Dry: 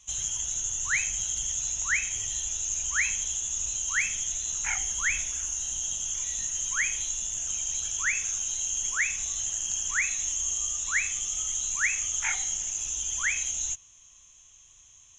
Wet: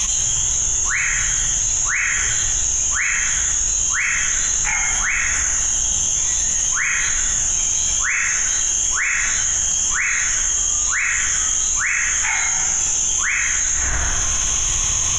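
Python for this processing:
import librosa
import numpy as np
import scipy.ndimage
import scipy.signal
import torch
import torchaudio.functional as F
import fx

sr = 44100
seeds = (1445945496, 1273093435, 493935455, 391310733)

y = fx.rev_plate(x, sr, seeds[0], rt60_s=1.7, hf_ratio=0.3, predelay_ms=0, drr_db=-7.0)
y = fx.env_flatten(y, sr, amount_pct=100)
y = y * 10.0 ** (-1.5 / 20.0)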